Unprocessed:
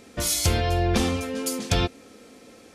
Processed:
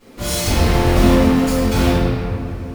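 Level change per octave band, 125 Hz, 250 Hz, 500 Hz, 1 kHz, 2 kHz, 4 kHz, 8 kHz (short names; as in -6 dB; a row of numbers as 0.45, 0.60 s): +9.0, +13.0, +9.5, +8.5, +7.5, +4.0, +1.0 dB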